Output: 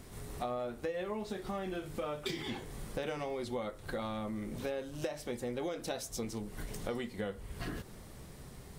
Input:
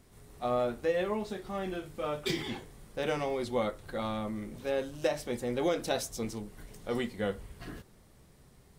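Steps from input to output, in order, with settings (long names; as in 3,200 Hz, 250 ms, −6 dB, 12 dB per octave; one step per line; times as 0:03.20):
downward compressor 6 to 1, threshold −45 dBFS, peak gain reduction 19.5 dB
level +9 dB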